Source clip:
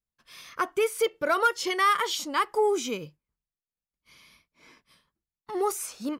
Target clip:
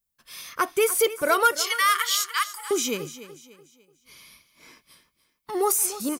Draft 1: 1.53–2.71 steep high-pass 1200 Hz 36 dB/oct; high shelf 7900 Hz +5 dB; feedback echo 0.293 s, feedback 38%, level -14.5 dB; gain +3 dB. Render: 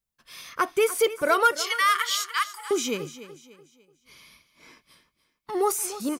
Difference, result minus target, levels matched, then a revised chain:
8000 Hz band -3.5 dB
1.53–2.71 steep high-pass 1200 Hz 36 dB/oct; high shelf 7900 Hz +15 dB; feedback echo 0.293 s, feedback 38%, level -14.5 dB; gain +3 dB

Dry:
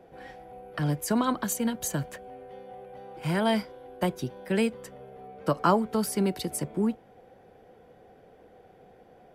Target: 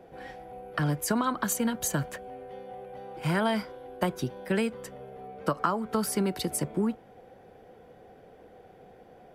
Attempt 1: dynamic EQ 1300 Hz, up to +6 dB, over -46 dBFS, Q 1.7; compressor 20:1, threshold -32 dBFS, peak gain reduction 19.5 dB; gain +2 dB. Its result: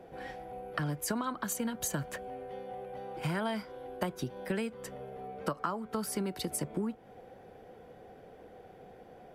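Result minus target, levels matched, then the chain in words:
compressor: peak gain reduction +7 dB
dynamic EQ 1300 Hz, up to +6 dB, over -46 dBFS, Q 1.7; compressor 20:1, threshold -24.5 dBFS, peak gain reduction 12 dB; gain +2 dB

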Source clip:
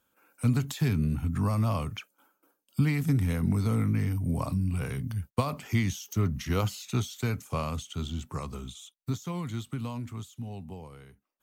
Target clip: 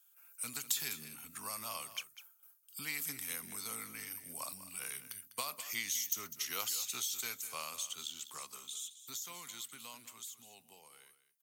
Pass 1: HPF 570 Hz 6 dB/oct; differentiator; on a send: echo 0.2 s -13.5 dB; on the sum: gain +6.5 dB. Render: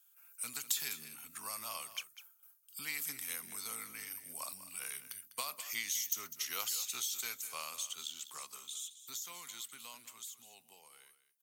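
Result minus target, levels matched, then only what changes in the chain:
250 Hz band -5.0 dB
change: HPF 250 Hz 6 dB/oct

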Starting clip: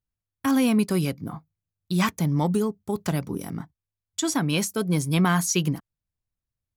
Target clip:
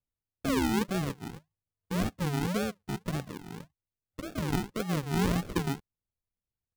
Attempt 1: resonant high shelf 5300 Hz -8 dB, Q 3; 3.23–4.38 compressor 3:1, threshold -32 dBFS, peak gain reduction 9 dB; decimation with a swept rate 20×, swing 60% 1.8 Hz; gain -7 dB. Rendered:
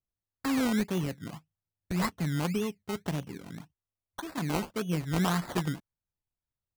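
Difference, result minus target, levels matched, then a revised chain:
decimation with a swept rate: distortion -10 dB
resonant high shelf 5300 Hz -8 dB, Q 3; 3.23–4.38 compressor 3:1, threshold -32 dBFS, peak gain reduction 9 dB; decimation with a swept rate 62×, swing 60% 1.8 Hz; gain -7 dB

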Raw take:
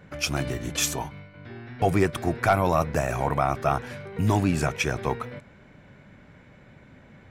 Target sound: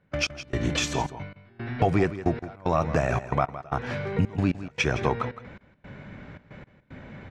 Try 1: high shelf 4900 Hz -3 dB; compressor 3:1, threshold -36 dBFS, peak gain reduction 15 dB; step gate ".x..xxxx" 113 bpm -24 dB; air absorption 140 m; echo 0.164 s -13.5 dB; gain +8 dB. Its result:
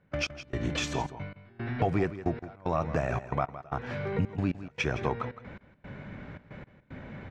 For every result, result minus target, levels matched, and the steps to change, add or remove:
compressor: peak gain reduction +5 dB; 8000 Hz band -2.5 dB
change: compressor 3:1, threshold -28.5 dBFS, peak gain reduction 10 dB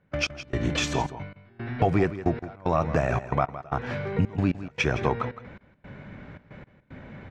8000 Hz band -2.5 dB
change: high shelf 4900 Hz +4 dB

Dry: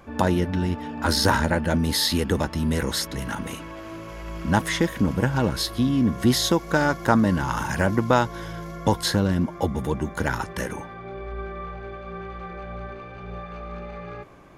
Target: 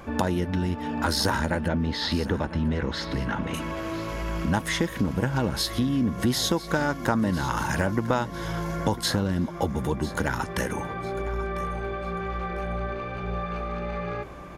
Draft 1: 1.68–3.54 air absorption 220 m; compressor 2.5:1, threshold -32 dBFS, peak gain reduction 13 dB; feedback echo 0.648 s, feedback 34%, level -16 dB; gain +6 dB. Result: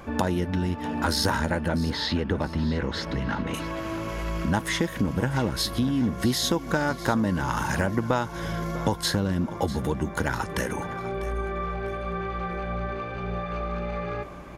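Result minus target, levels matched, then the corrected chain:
echo 0.351 s early
1.68–3.54 air absorption 220 m; compressor 2.5:1, threshold -32 dBFS, peak gain reduction 13 dB; feedback echo 0.999 s, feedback 34%, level -16 dB; gain +6 dB

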